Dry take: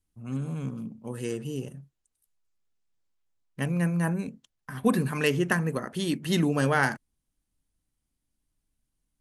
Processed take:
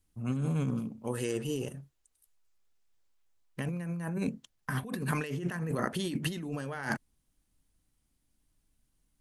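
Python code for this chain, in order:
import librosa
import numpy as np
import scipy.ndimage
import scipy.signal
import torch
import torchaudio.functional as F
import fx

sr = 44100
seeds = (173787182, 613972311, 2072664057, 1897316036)

y = fx.over_compress(x, sr, threshold_db=-33.0, ratio=-1.0)
y = fx.peak_eq(y, sr, hz=170.0, db=-7.0, octaves=1.5, at=(0.79, 3.6))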